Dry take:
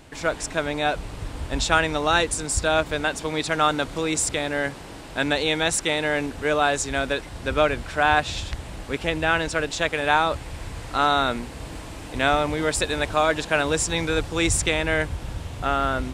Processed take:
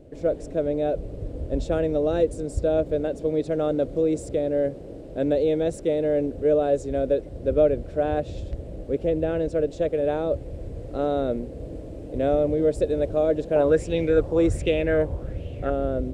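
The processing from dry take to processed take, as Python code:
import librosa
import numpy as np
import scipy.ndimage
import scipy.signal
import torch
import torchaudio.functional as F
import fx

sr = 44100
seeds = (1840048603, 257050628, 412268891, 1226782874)

y = fx.curve_eq(x, sr, hz=(220.0, 560.0, 910.0), db=(0, 7, -20))
y = fx.bell_lfo(y, sr, hz=1.3, low_hz=920.0, high_hz=2900.0, db=17, at=(13.56, 15.7))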